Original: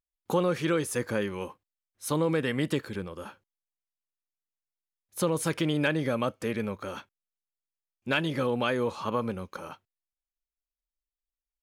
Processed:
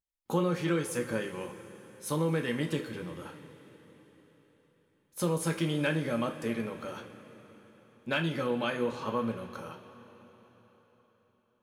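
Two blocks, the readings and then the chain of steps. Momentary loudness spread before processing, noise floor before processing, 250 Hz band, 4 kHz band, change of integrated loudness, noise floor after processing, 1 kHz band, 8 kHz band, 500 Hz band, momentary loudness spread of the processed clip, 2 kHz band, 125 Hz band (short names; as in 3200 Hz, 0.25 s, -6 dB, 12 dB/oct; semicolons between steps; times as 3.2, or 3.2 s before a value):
15 LU, under -85 dBFS, -2.0 dB, -3.5 dB, -3.0 dB, -72 dBFS, -3.5 dB, -3.0 dB, -3.5 dB, 17 LU, -3.0 dB, -1.0 dB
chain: two-slope reverb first 0.31 s, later 4.4 s, from -18 dB, DRR 3 dB; gain -5 dB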